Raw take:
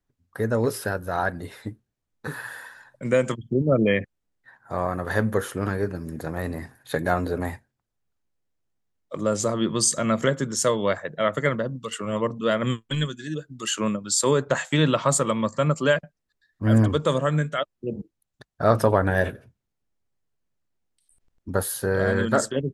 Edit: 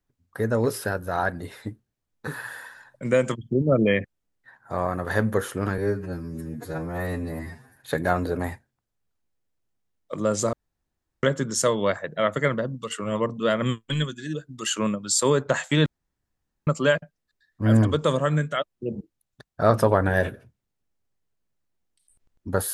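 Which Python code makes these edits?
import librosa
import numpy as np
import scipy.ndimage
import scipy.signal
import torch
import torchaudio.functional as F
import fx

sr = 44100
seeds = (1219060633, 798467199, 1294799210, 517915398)

y = fx.edit(x, sr, fx.stretch_span(start_s=5.78, length_s=0.99, factor=2.0),
    fx.room_tone_fill(start_s=9.54, length_s=0.7),
    fx.room_tone_fill(start_s=14.87, length_s=0.81), tone=tone)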